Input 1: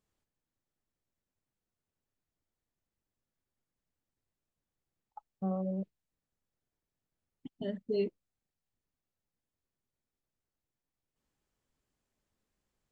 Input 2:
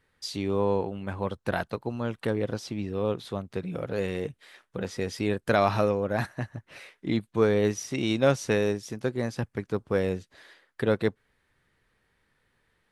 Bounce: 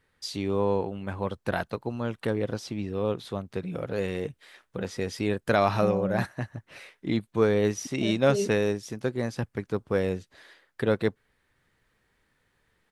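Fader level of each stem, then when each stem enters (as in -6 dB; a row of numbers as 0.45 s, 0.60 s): +3.0 dB, 0.0 dB; 0.40 s, 0.00 s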